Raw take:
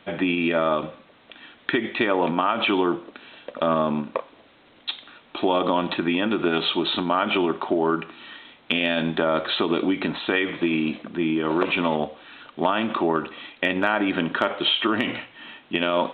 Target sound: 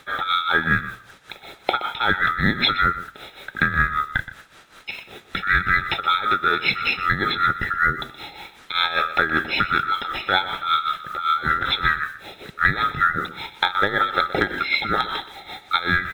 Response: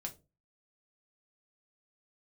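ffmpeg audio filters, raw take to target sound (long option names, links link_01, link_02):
-filter_complex "[0:a]afftfilt=real='real(if(lt(b,960),b+48*(1-2*mod(floor(b/48),2)),b),0)':imag='imag(if(lt(b,960),b+48*(1-2*mod(floor(b/48),2)),b),0)':win_size=2048:overlap=0.75,asplit=2[link_01][link_02];[link_02]acompressor=threshold=-30dB:ratio=10,volume=-1.5dB[link_03];[link_01][link_03]amix=inputs=2:normalize=0,acrusher=bits=7:mix=0:aa=0.5,tremolo=f=5.2:d=0.78,asplit=2[link_04][link_05];[link_05]adelay=122.4,volume=-14dB,highshelf=frequency=4000:gain=-2.76[link_06];[link_04][link_06]amix=inputs=2:normalize=0,volume=3dB"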